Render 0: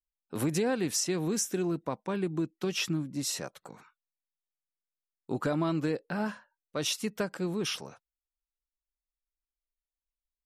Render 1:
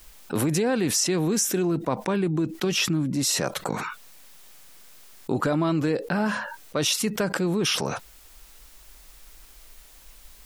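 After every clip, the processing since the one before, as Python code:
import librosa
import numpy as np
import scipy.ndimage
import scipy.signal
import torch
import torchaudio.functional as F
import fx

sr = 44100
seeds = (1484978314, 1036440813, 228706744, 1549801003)

y = fx.env_flatten(x, sr, amount_pct=70)
y = F.gain(torch.from_numpy(y), 4.0).numpy()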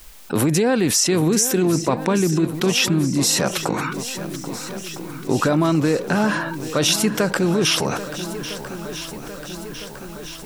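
y = fx.echo_swing(x, sr, ms=1307, ratio=1.5, feedback_pct=60, wet_db=-13.0)
y = F.gain(torch.from_numpy(y), 5.5).numpy()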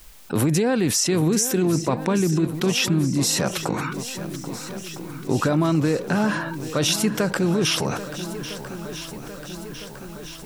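y = fx.peak_eq(x, sr, hz=99.0, db=4.5, octaves=1.9)
y = F.gain(torch.from_numpy(y), -3.5).numpy()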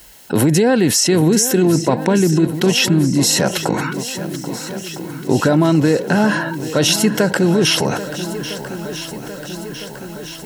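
y = fx.notch_comb(x, sr, f0_hz=1200.0)
y = F.gain(torch.from_numpy(y), 7.5).numpy()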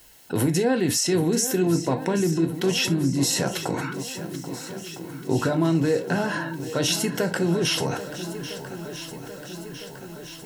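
y = fx.rev_gated(x, sr, seeds[0], gate_ms=90, shape='falling', drr_db=7.0)
y = F.gain(torch.from_numpy(y), -9.0).numpy()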